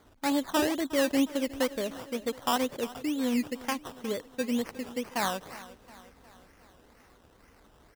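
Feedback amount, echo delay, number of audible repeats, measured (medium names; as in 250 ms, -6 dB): 55%, 361 ms, 4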